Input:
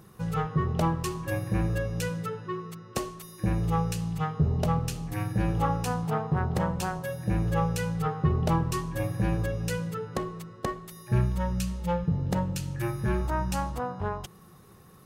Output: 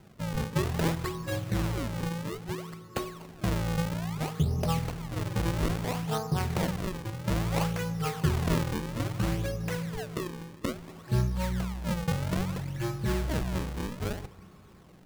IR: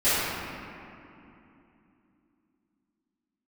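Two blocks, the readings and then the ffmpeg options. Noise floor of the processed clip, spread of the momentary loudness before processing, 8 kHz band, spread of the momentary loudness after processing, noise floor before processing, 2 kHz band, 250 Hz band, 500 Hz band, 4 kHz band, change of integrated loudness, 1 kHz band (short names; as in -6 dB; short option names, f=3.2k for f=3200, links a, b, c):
-52 dBFS, 8 LU, -1.0 dB, 8 LU, -52 dBFS, 0.0 dB, -1.5 dB, -2.0 dB, +3.0 dB, -2.0 dB, -5.0 dB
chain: -filter_complex "[0:a]acrusher=samples=37:mix=1:aa=0.000001:lfo=1:lforange=59.2:lforate=0.6,asplit=2[a][b];[1:a]atrim=start_sample=2205[c];[b][c]afir=irnorm=-1:irlink=0,volume=-35.5dB[d];[a][d]amix=inputs=2:normalize=0,volume=-2dB"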